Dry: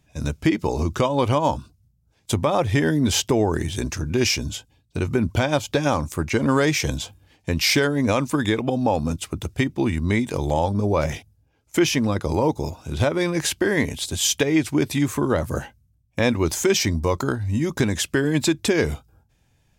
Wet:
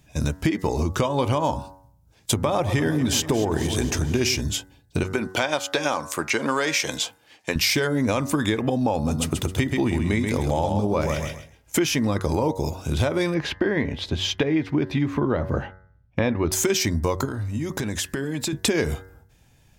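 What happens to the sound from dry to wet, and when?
2.33–4.41 echo with dull and thin repeats by turns 0.115 s, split 880 Hz, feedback 74%, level -11 dB
5.03–7.56 weighting filter A
8.95–11.8 feedback echo 0.132 s, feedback 23%, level -6 dB
13.34–16.52 air absorption 290 m
17.25–18.53 compressor, threshold -30 dBFS
whole clip: high shelf 11000 Hz +4.5 dB; de-hum 93.98 Hz, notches 22; compressor 4:1, threshold -26 dBFS; gain +6 dB

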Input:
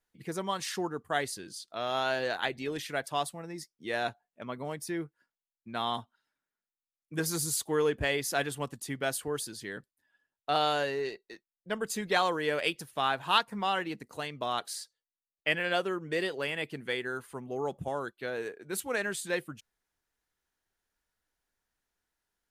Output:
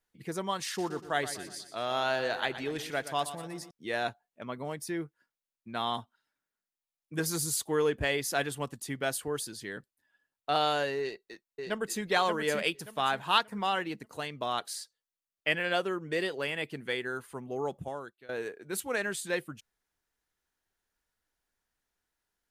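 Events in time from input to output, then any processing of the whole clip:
0.66–3.71 feedback echo 0.121 s, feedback 48%, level -12.5 dB
11–12.04 echo throw 0.58 s, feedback 30%, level -5 dB
17.66–18.29 fade out, to -21 dB

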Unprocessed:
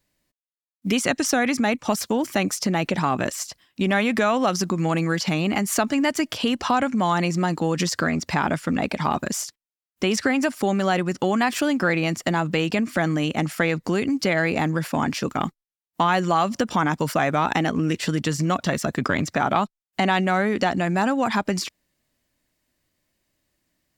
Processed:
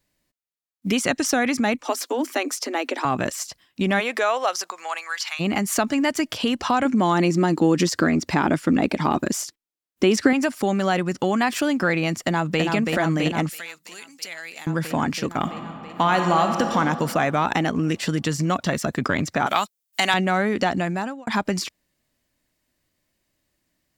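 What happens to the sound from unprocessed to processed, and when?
1.82–3.05 Chebyshev high-pass 250 Hz, order 8
3.99–5.39 HPF 320 Hz -> 1200 Hz 24 dB/oct
6.85–10.33 bell 320 Hz +9 dB
12.2–12.62 echo throw 0.33 s, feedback 80%, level -3.5 dB
13.49–14.67 differentiator
15.39–16.75 reverb throw, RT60 2.7 s, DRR 4 dB
19.46–20.14 tilt +4.5 dB/oct
20.78–21.27 fade out linear

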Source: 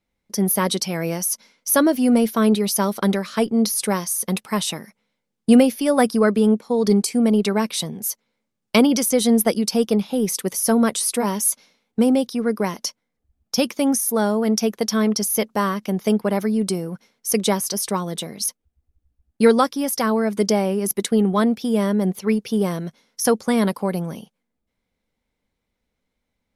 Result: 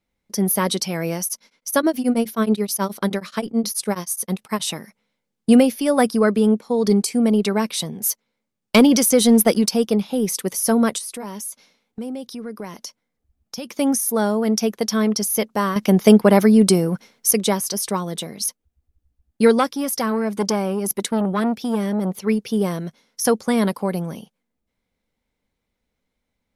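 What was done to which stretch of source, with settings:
1.24–4.63 beating tremolo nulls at 9.4 Hz
8.02–9.69 sample leveller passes 1
10.98–13.71 compressor 2.5:1, threshold -33 dBFS
15.76–17.31 gain +8 dB
19.59–22.24 core saturation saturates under 850 Hz

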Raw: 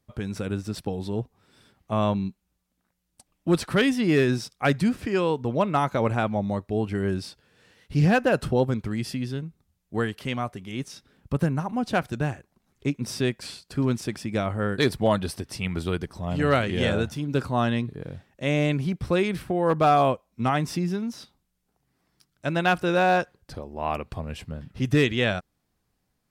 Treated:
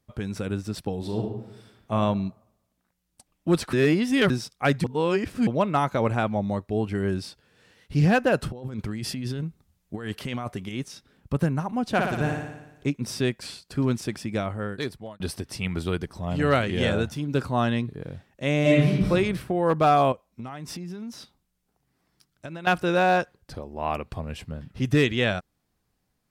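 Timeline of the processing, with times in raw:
0.98–1.93 reverb throw, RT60 0.87 s, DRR 1 dB
3.73–4.3 reverse
4.84–5.47 reverse
8.52–10.69 negative-ratio compressor -32 dBFS
11.92–12.87 flutter echo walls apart 9.9 m, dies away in 0.95 s
14.24–15.2 fade out
18.61–19.1 reverb throw, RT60 0.94 s, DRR -5 dB
20.12–22.67 compressor 16:1, threshold -32 dBFS

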